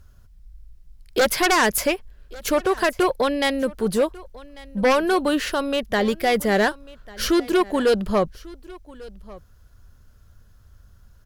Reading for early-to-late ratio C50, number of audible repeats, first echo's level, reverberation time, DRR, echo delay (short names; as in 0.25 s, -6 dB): none, 1, -21.5 dB, none, none, 1.145 s